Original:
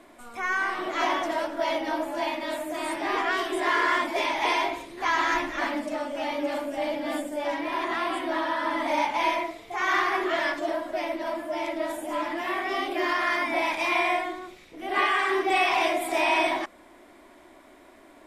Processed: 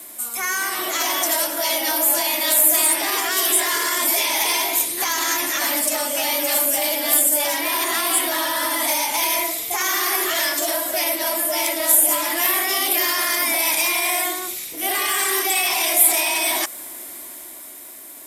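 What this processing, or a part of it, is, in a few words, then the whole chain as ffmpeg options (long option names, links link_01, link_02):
FM broadcast chain: -filter_complex "[0:a]highpass=53,dynaudnorm=framelen=110:gausssize=21:maxgain=5dB,acrossover=split=310|640|4800[link_01][link_02][link_03][link_04];[link_01]acompressor=threshold=-44dB:ratio=4[link_05];[link_02]acompressor=threshold=-32dB:ratio=4[link_06];[link_03]acompressor=threshold=-27dB:ratio=4[link_07];[link_04]acompressor=threshold=-43dB:ratio=4[link_08];[link_05][link_06][link_07][link_08]amix=inputs=4:normalize=0,aemphasis=mode=production:type=75fm,alimiter=limit=-18dB:level=0:latency=1:release=37,asoftclip=type=hard:threshold=-21.5dB,lowpass=frequency=15000:width=0.5412,lowpass=frequency=15000:width=1.3066,aemphasis=mode=production:type=75fm,volume=3dB"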